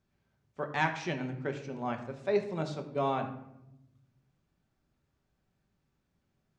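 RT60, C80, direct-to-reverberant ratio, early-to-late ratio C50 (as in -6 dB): 0.85 s, 12.5 dB, 4.5 dB, 9.5 dB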